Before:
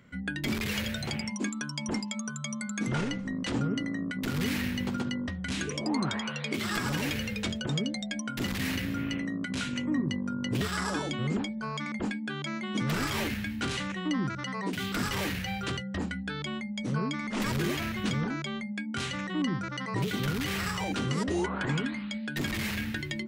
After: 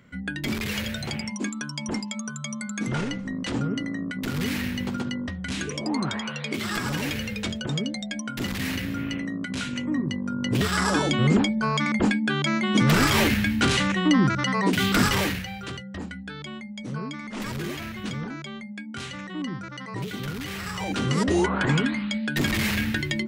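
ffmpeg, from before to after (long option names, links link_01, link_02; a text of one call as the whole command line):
ffmpeg -i in.wav -af "volume=20dB,afade=type=in:start_time=10.19:duration=1.1:silence=0.398107,afade=type=out:start_time=15.02:duration=0.47:silence=0.237137,afade=type=in:start_time=20.64:duration=0.65:silence=0.334965" out.wav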